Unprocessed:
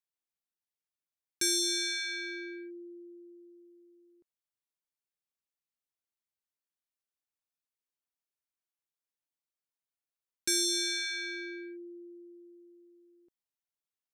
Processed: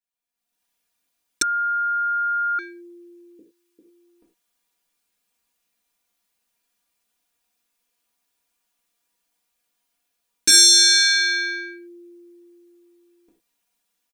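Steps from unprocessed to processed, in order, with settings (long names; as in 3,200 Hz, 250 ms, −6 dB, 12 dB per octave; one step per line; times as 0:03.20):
0:03.39–0:03.79: high-pass filter 1,000 Hz 12 dB per octave
comb filter 4.2 ms, depth 83%
automatic gain control gain up to 16.5 dB
reverb whose tail is shaped and stops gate 130 ms falling, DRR −3 dB
0:01.42–0:02.59: beep over 1,410 Hz −14.5 dBFS
level −5 dB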